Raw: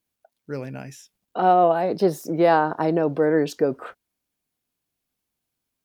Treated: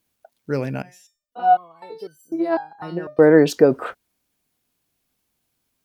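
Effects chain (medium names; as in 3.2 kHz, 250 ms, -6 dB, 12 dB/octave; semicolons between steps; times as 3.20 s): 0.82–3.19 s: resonator arpeggio 4 Hz 180–1500 Hz; trim +7.5 dB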